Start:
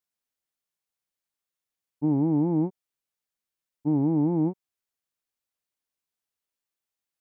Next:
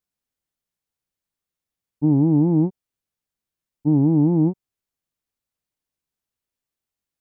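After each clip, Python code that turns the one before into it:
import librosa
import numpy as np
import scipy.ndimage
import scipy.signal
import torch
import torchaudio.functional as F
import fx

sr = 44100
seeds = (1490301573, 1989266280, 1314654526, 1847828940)

y = fx.low_shelf(x, sr, hz=310.0, db=11.0)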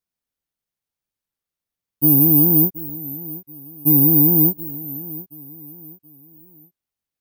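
y = fx.echo_feedback(x, sr, ms=727, feedback_pct=37, wet_db=-17)
y = (np.kron(scipy.signal.resample_poly(y, 1, 3), np.eye(3)[0]) * 3)[:len(y)]
y = fx.record_warp(y, sr, rpm=33.33, depth_cents=100.0)
y = y * 10.0 ** (-1.5 / 20.0)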